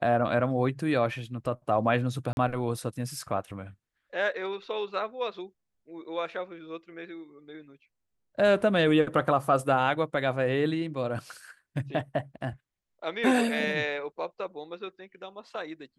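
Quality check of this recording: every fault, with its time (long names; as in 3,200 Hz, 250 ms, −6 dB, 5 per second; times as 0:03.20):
0:02.33–0:02.37: drop-out 41 ms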